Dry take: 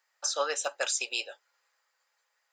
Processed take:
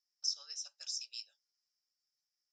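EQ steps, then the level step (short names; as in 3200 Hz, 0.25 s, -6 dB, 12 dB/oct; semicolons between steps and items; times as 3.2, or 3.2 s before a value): band-pass 5400 Hz, Q 19; +5.5 dB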